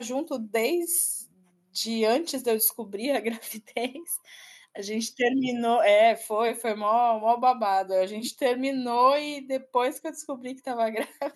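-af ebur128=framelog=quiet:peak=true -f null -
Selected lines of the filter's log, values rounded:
Integrated loudness:
  I:         -25.8 LUFS
  Threshold: -36.1 LUFS
Loudness range:
  LRA:         4.9 LU
  Threshold: -45.7 LUFS
  LRA low:   -28.5 LUFS
  LRA high:  -23.5 LUFS
True peak:
  Peak:       -8.7 dBFS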